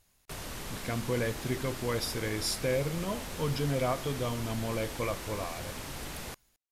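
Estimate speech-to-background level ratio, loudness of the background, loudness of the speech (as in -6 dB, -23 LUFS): 7.0 dB, -40.5 LUFS, -33.5 LUFS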